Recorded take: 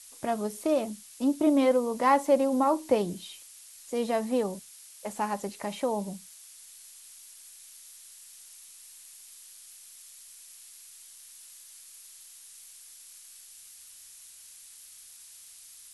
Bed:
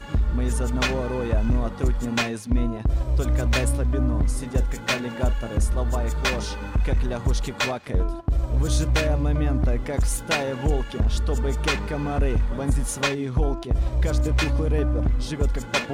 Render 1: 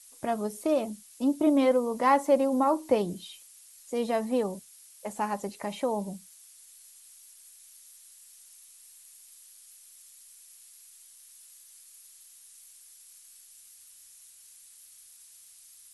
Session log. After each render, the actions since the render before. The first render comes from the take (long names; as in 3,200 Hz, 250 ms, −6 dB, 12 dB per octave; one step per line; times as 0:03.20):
broadband denoise 6 dB, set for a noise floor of −51 dBFS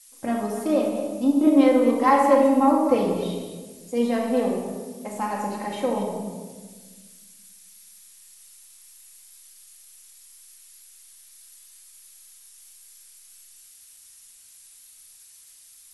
delay that plays each chunk backwards 147 ms, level −9 dB
rectangular room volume 1,200 cubic metres, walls mixed, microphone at 2.1 metres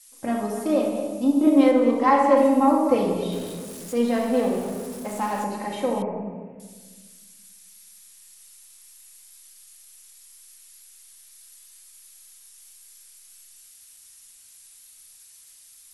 0:01.71–0:02.37: high-frequency loss of the air 56 metres
0:03.32–0:05.44: converter with a step at zero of −36 dBFS
0:06.02–0:06.60: Butterworth low-pass 2,600 Hz 72 dB per octave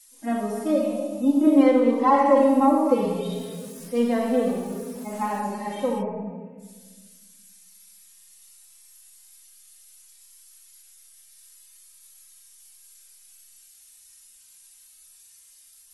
harmonic-percussive split with one part muted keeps harmonic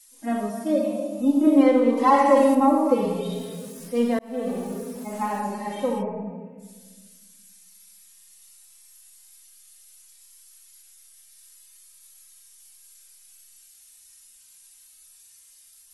0:00.49–0:01.19: notch comb filter 420 Hz
0:01.97–0:02.55: high-shelf EQ 2,400 Hz +9 dB
0:04.19–0:04.63: fade in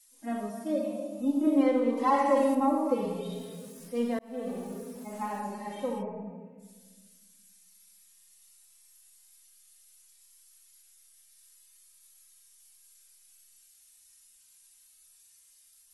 level −7.5 dB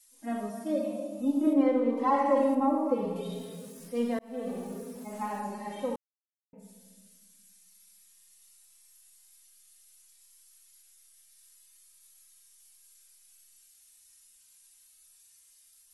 0:01.53–0:03.16: high-shelf EQ 2,700 Hz −9.5 dB
0:05.96–0:06.53: silence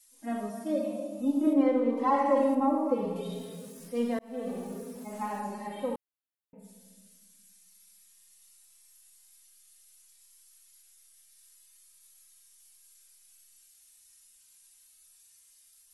0:05.67–0:06.64: parametric band 6,000 Hz −13.5 dB 0.4 octaves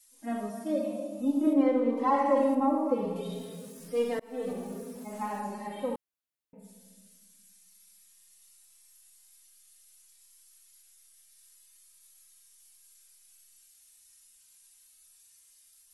0:03.88–0:04.53: comb filter 6.6 ms, depth 87%